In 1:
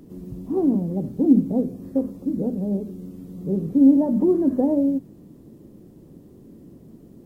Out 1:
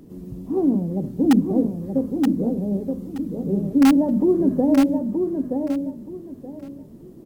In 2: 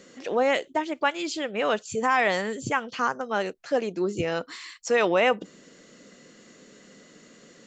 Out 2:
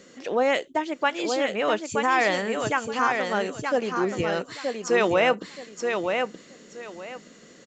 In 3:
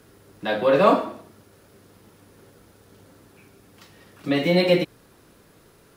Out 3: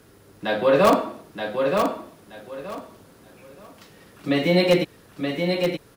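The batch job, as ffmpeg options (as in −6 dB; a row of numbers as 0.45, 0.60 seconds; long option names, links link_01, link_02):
-filter_complex "[0:a]asplit=2[link_01][link_02];[link_02]aeval=exprs='(mod(2.51*val(0)+1,2)-1)/2.51':channel_layout=same,volume=-9.5dB[link_03];[link_01][link_03]amix=inputs=2:normalize=0,aecho=1:1:925|1850|2775:0.562|0.129|0.0297,volume=-2dB"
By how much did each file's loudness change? +0.5, +1.0, −1.0 LU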